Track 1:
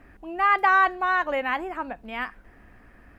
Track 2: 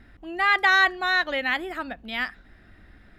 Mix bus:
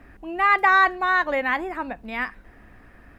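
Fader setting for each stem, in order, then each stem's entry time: +2.5 dB, -10.0 dB; 0.00 s, 0.00 s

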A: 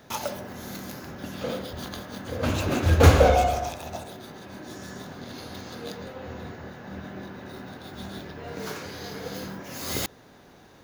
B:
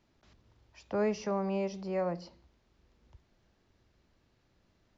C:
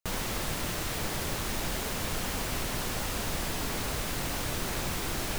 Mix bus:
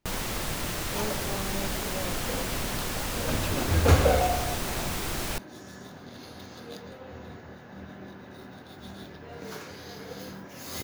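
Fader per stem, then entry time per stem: -5.0 dB, -6.0 dB, +1.0 dB; 0.85 s, 0.00 s, 0.00 s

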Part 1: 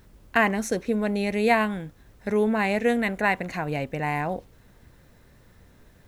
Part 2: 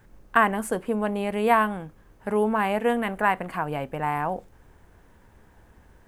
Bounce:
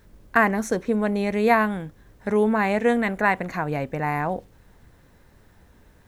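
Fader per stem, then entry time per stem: -2.0 dB, -4.0 dB; 0.00 s, 0.00 s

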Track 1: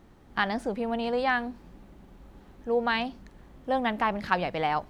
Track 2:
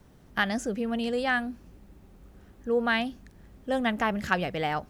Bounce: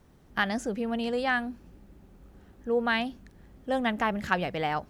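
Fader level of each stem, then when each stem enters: -11.0 dB, -3.5 dB; 0.00 s, 0.00 s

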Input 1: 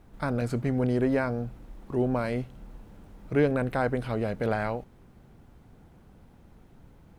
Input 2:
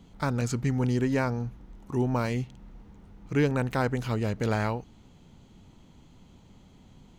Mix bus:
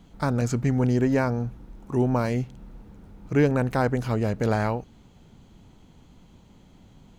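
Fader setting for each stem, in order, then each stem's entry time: -5.0 dB, +0.5 dB; 0.00 s, 0.00 s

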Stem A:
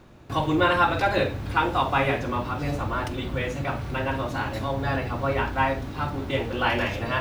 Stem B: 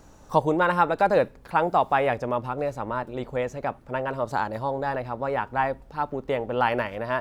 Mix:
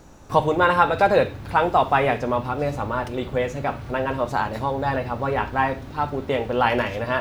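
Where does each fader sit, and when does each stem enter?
-3.5 dB, +2.5 dB; 0.00 s, 0.00 s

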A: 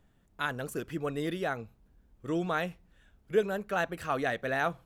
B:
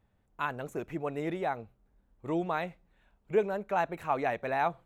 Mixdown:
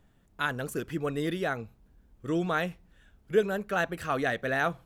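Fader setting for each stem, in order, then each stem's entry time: +2.5 dB, -15.0 dB; 0.00 s, 0.00 s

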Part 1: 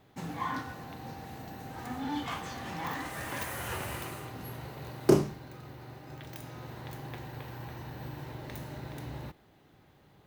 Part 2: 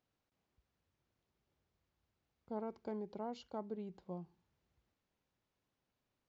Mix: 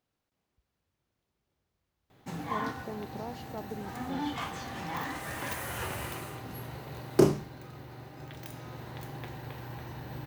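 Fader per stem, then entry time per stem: +0.5 dB, +2.5 dB; 2.10 s, 0.00 s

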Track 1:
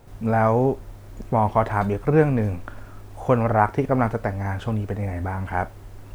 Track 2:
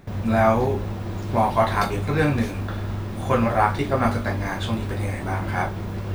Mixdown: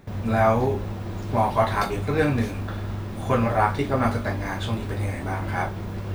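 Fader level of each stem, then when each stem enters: -12.0 dB, -2.0 dB; 0.00 s, 0.00 s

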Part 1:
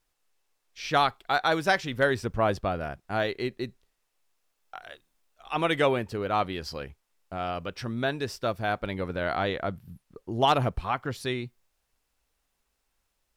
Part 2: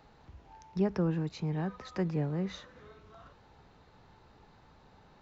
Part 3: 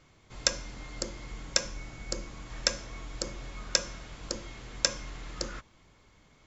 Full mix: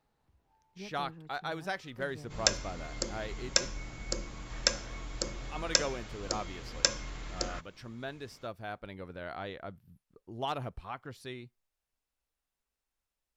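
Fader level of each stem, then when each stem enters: -12.5 dB, -17.5 dB, 0.0 dB; 0.00 s, 0.00 s, 2.00 s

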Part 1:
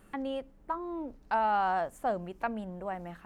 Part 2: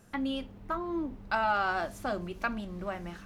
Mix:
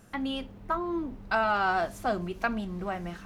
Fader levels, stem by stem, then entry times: -4.5 dB, +2.0 dB; 0.00 s, 0.00 s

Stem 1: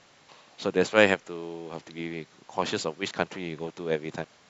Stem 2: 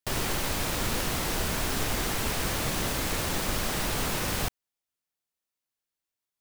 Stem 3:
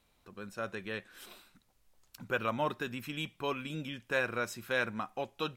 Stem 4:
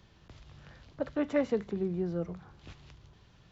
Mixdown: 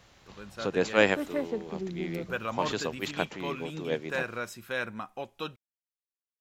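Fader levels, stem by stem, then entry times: -3.0 dB, mute, -1.0 dB, -3.5 dB; 0.00 s, mute, 0.00 s, 0.00 s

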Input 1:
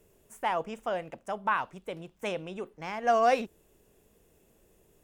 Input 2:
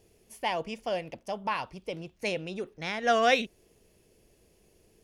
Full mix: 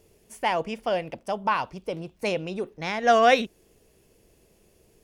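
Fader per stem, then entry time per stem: -2.0 dB, +1.5 dB; 0.00 s, 0.00 s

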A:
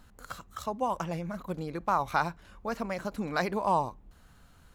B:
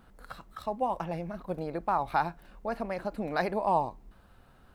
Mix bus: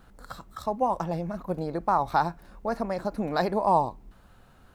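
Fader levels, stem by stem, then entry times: -6.0 dB, +2.0 dB; 0.00 s, 0.00 s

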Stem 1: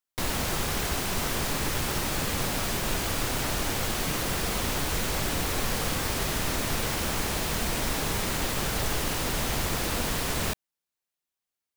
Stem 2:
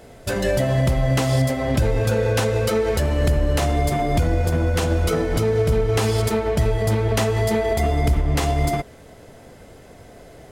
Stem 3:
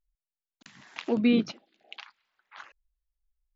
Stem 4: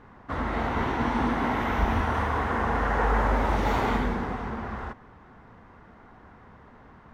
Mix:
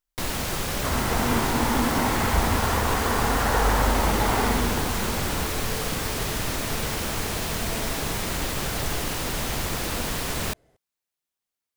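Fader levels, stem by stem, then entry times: +0.5 dB, -19.5 dB, -8.5 dB, +1.5 dB; 0.00 s, 0.25 s, 0.00 s, 0.55 s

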